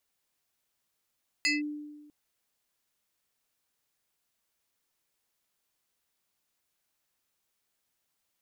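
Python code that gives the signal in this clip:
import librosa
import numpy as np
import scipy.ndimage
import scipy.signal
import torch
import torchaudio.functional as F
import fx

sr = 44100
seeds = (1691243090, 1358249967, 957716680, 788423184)

y = fx.fm2(sr, length_s=0.65, level_db=-22.0, carrier_hz=297.0, ratio=7.82, index=2.5, index_s=0.17, decay_s=1.28, shape='linear')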